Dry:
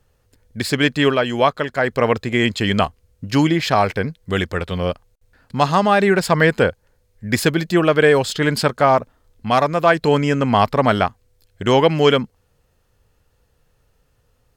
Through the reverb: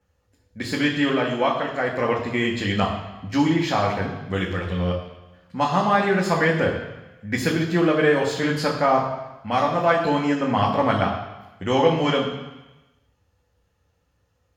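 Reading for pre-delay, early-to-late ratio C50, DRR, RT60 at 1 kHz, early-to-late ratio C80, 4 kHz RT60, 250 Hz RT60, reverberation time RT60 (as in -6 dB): 3 ms, 6.0 dB, -2.0 dB, 1.1 s, 8.0 dB, 1.1 s, 1.0 s, 1.1 s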